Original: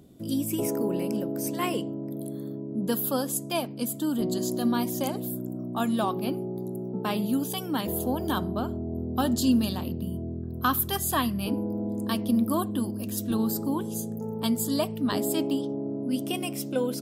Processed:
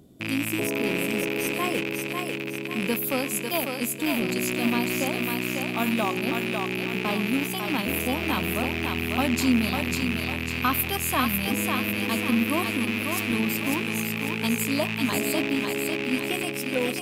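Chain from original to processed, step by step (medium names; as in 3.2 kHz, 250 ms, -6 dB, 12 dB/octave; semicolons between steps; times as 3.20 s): rattle on loud lows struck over -34 dBFS, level -18 dBFS; thinning echo 548 ms, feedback 45%, high-pass 420 Hz, level -3.5 dB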